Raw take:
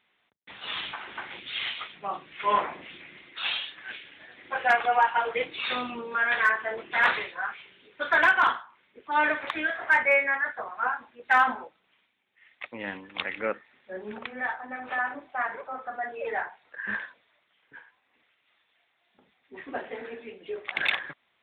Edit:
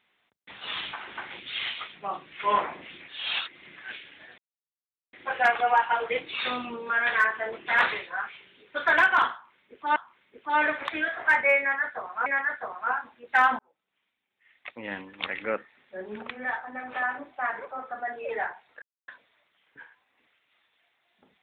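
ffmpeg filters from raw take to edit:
-filter_complex "[0:a]asplit=9[a][b][c][d][e][f][g][h][i];[a]atrim=end=3.082[j];[b]atrim=start=3.078:end=3.762,asetpts=PTS-STARTPTS,areverse[k];[c]atrim=start=3.758:end=4.38,asetpts=PTS-STARTPTS,afade=t=out:st=0.618:d=0.004:c=hsin,apad=pad_dur=0.75[l];[d]atrim=start=4.38:end=9.212,asetpts=PTS-STARTPTS,afade=t=in:d=0.004:c=hsin[m];[e]atrim=start=8.578:end=10.882[n];[f]atrim=start=10.218:end=11.55,asetpts=PTS-STARTPTS,afade=t=out:st=1.328:d=0.004:c=hsin[o];[g]atrim=start=11.55:end=16.78,asetpts=PTS-STARTPTS,afade=t=in:d=1.36,afade=t=out:st=5.226:d=0.004:c=hsin[p];[h]atrim=start=16.78:end=17.04,asetpts=PTS-STARTPTS,volume=0[q];[i]atrim=start=17.04,asetpts=PTS-STARTPTS,afade=t=in:d=0.004:c=hsin[r];[j][k]acrossfade=d=0.004:c1=hsin:c2=hsin[s];[l][m]concat=n=2:v=0:a=1[t];[s][t]acrossfade=d=0.004:c1=hsin:c2=hsin[u];[u][n]acrossfade=d=0.004:c1=hsin:c2=hsin[v];[o][p][q][r]concat=n=4:v=0:a=1[w];[v][w]acrossfade=d=0.004:c1=hsin:c2=hsin"

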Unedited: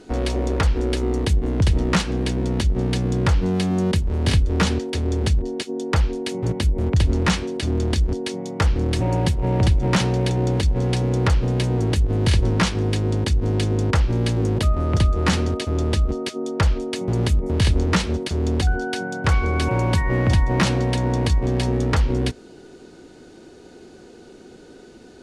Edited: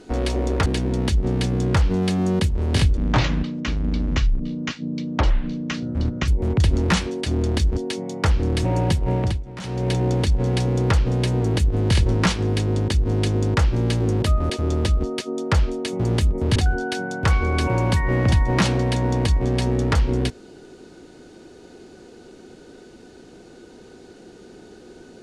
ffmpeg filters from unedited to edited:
-filter_complex "[0:a]asplit=8[a][b][c][d][e][f][g][h];[a]atrim=end=0.662[i];[b]atrim=start=2.178:end=4.494[j];[c]atrim=start=4.49:end=6.64,asetpts=PTS-STARTPTS,asetrate=28665,aresample=44100,atrim=end_sample=145869,asetpts=PTS-STARTPTS[k];[d]atrim=start=6.636:end=9.81,asetpts=PTS-STARTPTS,afade=t=out:st=2.844:d=0.33:silence=0.149624[l];[e]atrim=start=9.81:end=9.96,asetpts=PTS-STARTPTS,volume=-16.5dB[m];[f]atrim=start=9.96:end=14.862,asetpts=PTS-STARTPTS,afade=t=in:d=0.33:silence=0.149624[n];[g]atrim=start=15.578:end=17.642[o];[h]atrim=start=18.568[p];[i][j]acrossfade=d=0.004:c1=hsin:c2=hsin[q];[q][k]acrossfade=d=0.004:c1=hsin:c2=hsin[r];[l][m][n]concat=n=3:v=0:a=1[s];[r][s]acrossfade=d=0.004:c1=hsin:c2=hsin[t];[t][o]acrossfade=d=0.004:c1=hsin:c2=hsin[u];[u][p]acrossfade=d=0.004:c1=hsin:c2=hsin"

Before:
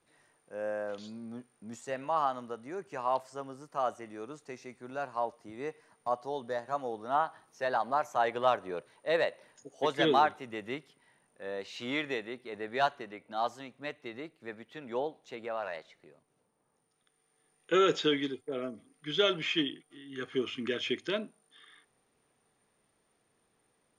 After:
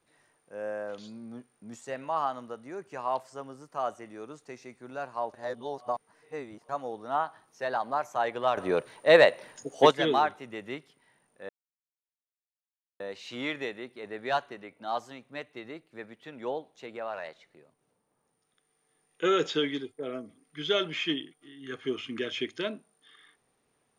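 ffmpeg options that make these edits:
-filter_complex "[0:a]asplit=6[a][b][c][d][e][f];[a]atrim=end=5.342[g];[b]atrim=start=5.338:end=6.692,asetpts=PTS-STARTPTS,areverse[h];[c]atrim=start=6.688:end=8.572[i];[d]atrim=start=8.568:end=9.912,asetpts=PTS-STARTPTS,volume=11dB[j];[e]atrim=start=9.908:end=11.49,asetpts=PTS-STARTPTS,afade=t=out:st=1.578:d=0.004:c=hsin,apad=pad_dur=1.51[k];[f]atrim=start=11.49,asetpts=PTS-STARTPTS,afade=t=in:d=0.004:c=hsin[l];[g][h]acrossfade=d=0.004:c1=hsin:c2=hsin[m];[m][i]acrossfade=d=0.004:c1=hsin:c2=hsin[n];[n][j]acrossfade=d=0.004:c1=hsin:c2=hsin[o];[k][l]concat=n=2:v=0:a=1[p];[o][p]acrossfade=d=0.004:c1=hsin:c2=hsin"

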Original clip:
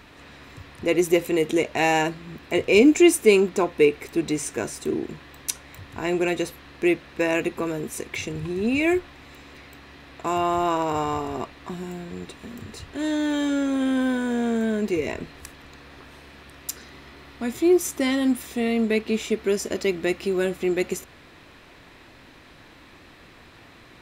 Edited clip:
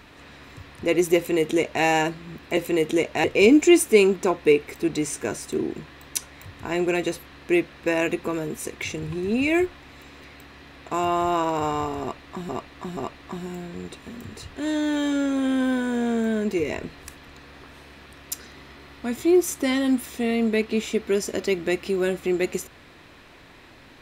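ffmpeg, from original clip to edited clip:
-filter_complex "[0:a]asplit=5[a][b][c][d][e];[a]atrim=end=2.572[f];[b]atrim=start=1.168:end=1.842[g];[c]atrim=start=2.568:end=11.822[h];[d]atrim=start=11.338:end=11.822[i];[e]atrim=start=11.338[j];[f][g]acrossfade=d=0.004:c1=hsin:c2=hsin[k];[k][h]acrossfade=d=0.004:c1=hsin:c2=hsin[l];[l][i]acrossfade=d=0.004:c1=hsin:c2=hsin[m];[m][j]acrossfade=d=0.004:c1=hsin:c2=hsin"

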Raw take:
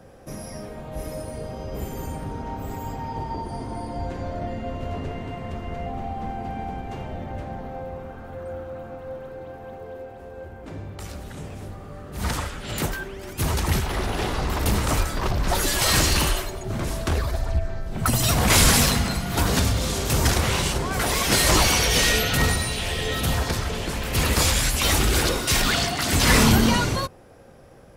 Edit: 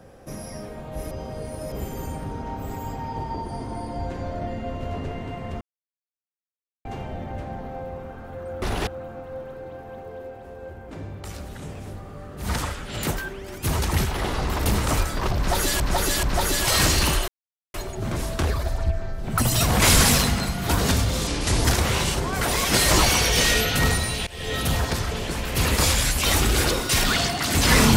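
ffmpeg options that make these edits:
-filter_complex "[0:a]asplit=14[a][b][c][d][e][f][g][h][i][j][k][l][m][n];[a]atrim=end=1.112[o];[b]atrim=start=1.108:end=1.722,asetpts=PTS-STARTPTS,areverse[p];[c]atrim=start=1.718:end=5.61,asetpts=PTS-STARTPTS,afade=t=out:st=3.888:d=0.004:c=hsin[q];[d]atrim=start=5.61:end=6.85,asetpts=PTS-STARTPTS,volume=0[r];[e]atrim=start=6.85:end=8.622,asetpts=PTS-STARTPTS,afade=t=in:d=0.004:c=hsin[s];[f]atrim=start=13.988:end=14.242[t];[g]atrim=start=8.618:end=13.992[u];[h]atrim=start=14.238:end=15.802[v];[i]atrim=start=15.368:end=15.802[w];[j]atrim=start=15.368:end=16.42,asetpts=PTS-STARTPTS,afade=t=out:st=1.048:d=0.004:c=hsin,apad=pad_dur=0.46[x];[k]atrim=start=16.42:end=19.954,asetpts=PTS-STARTPTS,afade=t=in:d=0.004:c=hsin[y];[l]atrim=start=19.95:end=20.23,asetpts=PTS-STARTPTS,asetrate=32634,aresample=44100,atrim=end_sample=16686,asetpts=PTS-STARTPTS[z];[m]atrim=start=20.226:end=22.85,asetpts=PTS-STARTPTS,afade=t=out:st=2.62:d=0.004:c=hsin:silence=0.0668344[aa];[n]atrim=start=22.85,asetpts=PTS-STARTPTS,afade=t=in:d=0.29:silence=0.0668344[ab];[o][p]acrossfade=d=0.004:c1=hsin:c2=hsin[ac];[q][r][s]concat=n=3:v=0:a=1[ad];[ac][ad]acrossfade=d=0.004:c1=hsin:c2=hsin[ae];[ae][t]acrossfade=d=0.004:c1=hsin:c2=hsin[af];[af][u]acrossfade=d=0.004:c1=hsin:c2=hsin[ag];[ag][v]acrossfade=d=0.004:c1=hsin:c2=hsin[ah];[ah][w]acrossfade=d=0.004:c1=hsin:c2=hsin[ai];[x][y]concat=n=2:v=0:a=1[aj];[ai][aj]acrossfade=d=0.004:c1=hsin:c2=hsin[ak];[ak][z]acrossfade=d=0.004:c1=hsin:c2=hsin[al];[aa][ab]concat=n=2:v=0:a=1[am];[al][am]acrossfade=d=0.004:c1=hsin:c2=hsin"

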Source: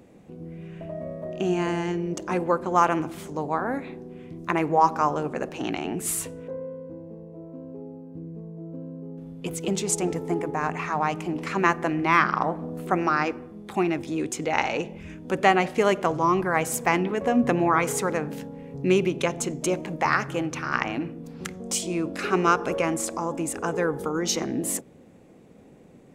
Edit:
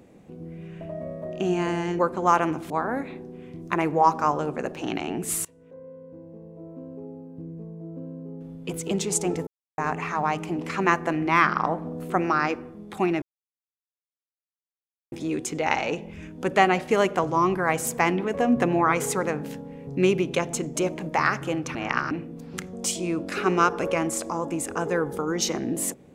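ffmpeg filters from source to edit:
-filter_complex "[0:a]asplit=9[a][b][c][d][e][f][g][h][i];[a]atrim=end=1.992[j];[b]atrim=start=2.478:end=3.192[k];[c]atrim=start=3.468:end=6.22,asetpts=PTS-STARTPTS,afade=t=out:st=2.748:d=0.004:c=hsin:silence=0.0707946[l];[d]atrim=start=6.22:end=10.24,asetpts=PTS-STARTPTS,afade=t=in:d=1.27:silence=0.0707946,afade=t=out:st=4.016:d=0.004:c=hsin[m];[e]atrim=start=10.24:end=10.55,asetpts=PTS-STARTPTS,volume=0[n];[f]atrim=start=10.55:end=13.99,asetpts=PTS-STARTPTS,afade=t=in:d=0.004:c=hsin,afade=t=out:st=3.436:d=0.004:c=hsin,apad=pad_dur=1.9[o];[g]atrim=start=13.99:end=20.622,asetpts=PTS-STARTPTS,afade=t=in:d=0.004:c=hsin[p];[h]atrim=start=20.618:end=20.982,asetpts=PTS-STARTPTS,areverse[q];[i]atrim=start=20.978[r];[j][k]acrossfade=d=0.004:c1=hsin:c2=hsin[s];[l][m][n][o][p]concat=n=5:v=0:a=1[t];[s][t]acrossfade=d=0.004:c1=hsin:c2=hsin[u];[u][q]acrossfade=d=0.004:c1=hsin:c2=hsin[v];[v][r]acrossfade=d=0.004:c1=hsin:c2=hsin"

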